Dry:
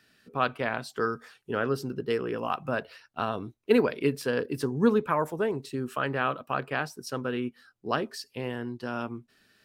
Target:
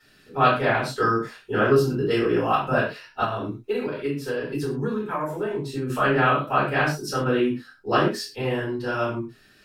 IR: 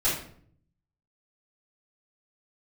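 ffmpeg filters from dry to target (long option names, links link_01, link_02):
-filter_complex "[1:a]atrim=start_sample=2205,atrim=end_sample=6174[link_01];[0:a][link_01]afir=irnorm=-1:irlink=0,asettb=1/sr,asplit=3[link_02][link_03][link_04];[link_02]atrim=end=3.244[link_05];[link_03]atrim=start=3.24:end=5.9,asetpts=PTS-STARTPTS,afade=type=in:duration=0.004:curve=qsin,afade=type=out:start_time=2.656:duration=0.004:curve=qsin,acompressor=threshold=-22dB:ratio=6[link_06];[link_04]atrim=start=5.896[link_07];[link_05][link_06]acrossfade=duration=0.004:curve1=hsin:curve2=qsin[link_08];[link_08][link_07]acrossfade=duration=0.004:curve1=qsin:curve2=hsin,volume=-2.5dB"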